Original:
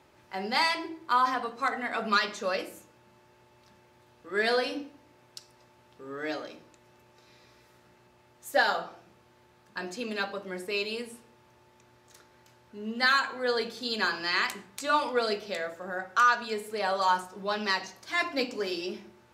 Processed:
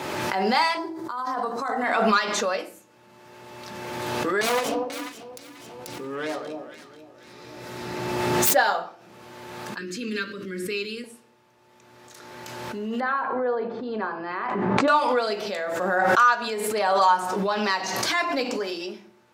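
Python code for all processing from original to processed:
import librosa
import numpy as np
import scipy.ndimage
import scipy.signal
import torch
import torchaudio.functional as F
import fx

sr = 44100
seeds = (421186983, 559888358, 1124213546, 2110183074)

y = fx.chain(x, sr, fx.peak_eq(hz=2600.0, db=-13.0, octaves=1.0),
    fx.over_compress(threshold_db=-33.0, ratio=-0.5), at=(0.77, 1.84))
y = fx.chain(y, sr, fx.self_delay(depth_ms=0.46),
    fx.low_shelf(hz=220.0, db=6.5),
    fx.echo_alternate(ms=244, hz=900.0, feedback_pct=52, wet_db=-3.0), at=(4.41, 8.55))
y = fx.chain(y, sr, fx.cheby1_bandstop(low_hz=390.0, high_hz=1500.0, order=2),
    fx.low_shelf(hz=190.0, db=10.0), at=(9.78, 11.04))
y = fx.chain(y, sr, fx.lowpass(hz=1000.0, slope=12),
    fx.sustainer(db_per_s=58.0), at=(13.0, 14.88))
y = scipy.signal.sosfilt(scipy.signal.butter(2, 140.0, 'highpass', fs=sr, output='sos'), y)
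y = fx.dynamic_eq(y, sr, hz=870.0, q=0.96, threshold_db=-41.0, ratio=4.0, max_db=6)
y = fx.pre_swell(y, sr, db_per_s=24.0)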